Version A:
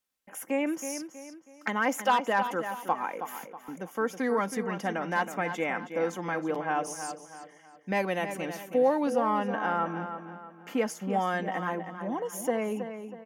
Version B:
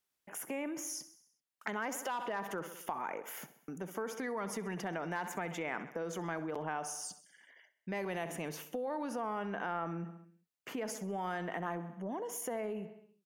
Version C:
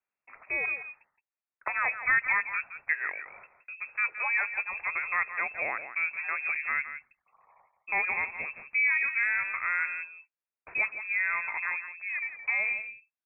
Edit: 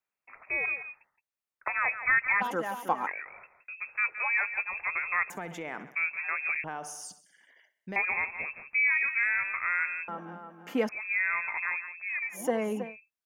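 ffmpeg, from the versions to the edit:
ffmpeg -i take0.wav -i take1.wav -i take2.wav -filter_complex "[0:a]asplit=3[link_01][link_02][link_03];[1:a]asplit=2[link_04][link_05];[2:a]asplit=6[link_06][link_07][link_08][link_09][link_10][link_11];[link_06]atrim=end=2.42[link_12];[link_01]atrim=start=2.4:end=3.08[link_13];[link_07]atrim=start=3.06:end=5.302[link_14];[link_04]atrim=start=5.298:end=5.952[link_15];[link_08]atrim=start=5.948:end=6.642[link_16];[link_05]atrim=start=6.638:end=7.962[link_17];[link_09]atrim=start=7.958:end=10.082[link_18];[link_02]atrim=start=10.078:end=10.892[link_19];[link_10]atrim=start=10.888:end=12.45[link_20];[link_03]atrim=start=12.29:end=12.97[link_21];[link_11]atrim=start=12.81[link_22];[link_12][link_13]acrossfade=duration=0.02:curve1=tri:curve2=tri[link_23];[link_23][link_14]acrossfade=duration=0.02:curve1=tri:curve2=tri[link_24];[link_24][link_15]acrossfade=duration=0.004:curve1=hsin:curve2=hsin[link_25];[link_25][link_16]acrossfade=duration=0.004:curve1=hsin:curve2=hsin[link_26];[link_26][link_17]acrossfade=duration=0.004:curve1=hsin:curve2=hsin[link_27];[link_27][link_18]acrossfade=duration=0.004:curve1=hsin:curve2=hsin[link_28];[link_28][link_19]acrossfade=duration=0.004:curve1=hsin:curve2=hsin[link_29];[link_29][link_20]acrossfade=duration=0.004:curve1=hsin:curve2=hsin[link_30];[link_30][link_21]acrossfade=duration=0.16:curve1=tri:curve2=tri[link_31];[link_31][link_22]acrossfade=duration=0.16:curve1=tri:curve2=tri" out.wav

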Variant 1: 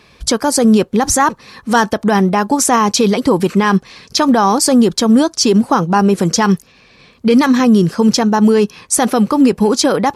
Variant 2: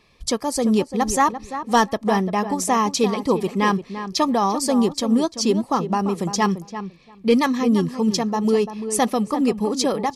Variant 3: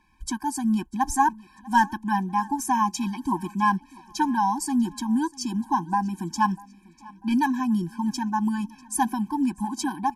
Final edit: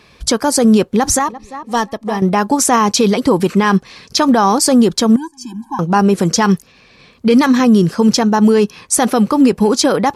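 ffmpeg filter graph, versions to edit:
ffmpeg -i take0.wav -i take1.wav -i take2.wav -filter_complex "[0:a]asplit=3[link_01][link_02][link_03];[link_01]atrim=end=1.192[link_04];[1:a]atrim=start=1.188:end=2.222[link_05];[link_02]atrim=start=2.218:end=5.162[link_06];[2:a]atrim=start=5.158:end=5.792[link_07];[link_03]atrim=start=5.788[link_08];[link_04][link_05]acrossfade=duration=0.004:curve1=hsin:curve2=hsin[link_09];[link_09][link_06]acrossfade=duration=0.004:curve1=hsin:curve2=hsin[link_10];[link_10][link_07]acrossfade=duration=0.004:curve1=hsin:curve2=hsin[link_11];[link_11][link_08]acrossfade=duration=0.004:curve1=hsin:curve2=hsin" out.wav

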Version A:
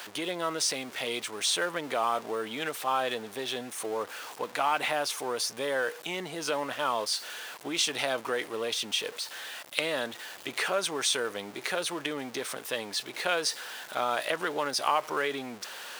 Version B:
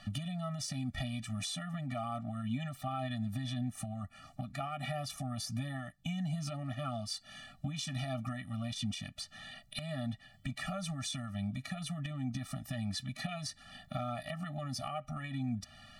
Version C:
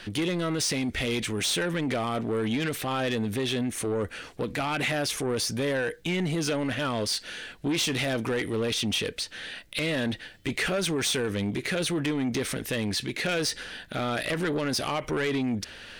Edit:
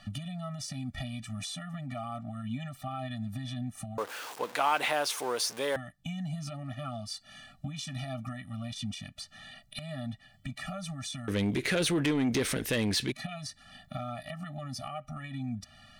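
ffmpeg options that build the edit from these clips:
ffmpeg -i take0.wav -i take1.wav -i take2.wav -filter_complex "[1:a]asplit=3[link_01][link_02][link_03];[link_01]atrim=end=3.982[link_04];[0:a]atrim=start=3.978:end=5.762[link_05];[link_02]atrim=start=5.758:end=11.282[link_06];[2:a]atrim=start=11.278:end=13.122[link_07];[link_03]atrim=start=13.118[link_08];[link_04][link_05]acrossfade=duration=0.004:curve1=hsin:curve2=hsin[link_09];[link_09][link_06]acrossfade=duration=0.004:curve1=hsin:curve2=hsin[link_10];[link_10][link_07]acrossfade=duration=0.004:curve1=hsin:curve2=hsin[link_11];[link_11][link_08]acrossfade=duration=0.004:curve1=hsin:curve2=hsin" out.wav

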